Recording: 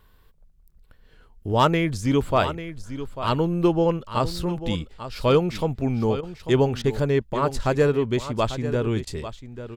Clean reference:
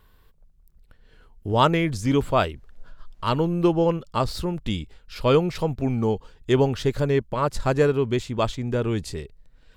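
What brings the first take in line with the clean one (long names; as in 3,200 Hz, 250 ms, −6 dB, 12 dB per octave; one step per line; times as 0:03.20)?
clipped peaks rebuilt −8.5 dBFS
repair the gap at 0:06.21/0:06.82/0:09.05, 19 ms
echo removal 844 ms −12 dB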